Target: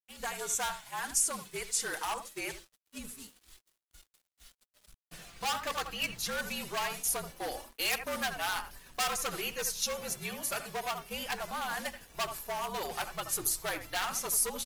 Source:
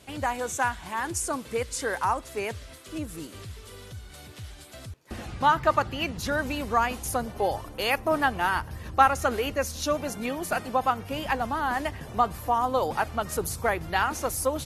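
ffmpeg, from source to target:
ffmpeg -i in.wav -filter_complex "[0:a]bandreject=frequency=50:width_type=h:width=6,bandreject=frequency=100:width_type=h:width=6,bandreject=frequency=150:width_type=h:width=6,bandreject=frequency=200:width_type=h:width=6,bandreject=frequency=250:width_type=h:width=6,bandreject=frequency=300:width_type=h:width=6,bandreject=frequency=350:width_type=h:width=6,bandreject=frequency=400:width_type=h:width=6,agate=range=-33dB:threshold=-33dB:ratio=3:detection=peak,highshelf=frequency=6500:gain=-7,asplit=2[link_01][link_02];[link_02]adelay=80,highpass=300,lowpass=3400,asoftclip=type=hard:threshold=-15dB,volume=-12dB[link_03];[link_01][link_03]amix=inputs=2:normalize=0,afreqshift=-60,flanger=delay=3.3:depth=3.2:regen=-34:speed=0.26:shape=triangular,volume=26dB,asoftclip=hard,volume=-26dB,crystalizer=i=8:c=0,acrusher=bits=7:mix=0:aa=0.5,volume=-8dB" out.wav

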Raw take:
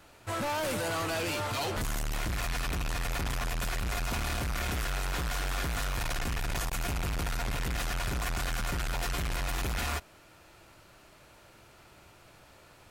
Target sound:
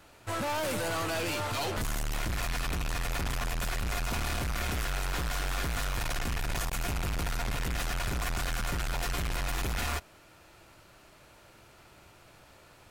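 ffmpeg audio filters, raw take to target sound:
ffmpeg -i in.wav -af "aeval=exprs='0.0631*(cos(1*acos(clip(val(0)/0.0631,-1,1)))-cos(1*PI/2))+0.00447*(cos(6*acos(clip(val(0)/0.0631,-1,1)))-cos(6*PI/2))':channel_layout=same" out.wav

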